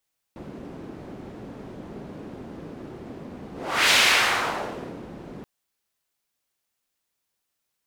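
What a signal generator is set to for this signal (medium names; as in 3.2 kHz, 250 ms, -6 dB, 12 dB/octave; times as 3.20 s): whoosh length 5.08 s, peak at 3.56 s, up 0.42 s, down 1.22 s, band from 280 Hz, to 2.8 kHz, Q 1.1, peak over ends 22 dB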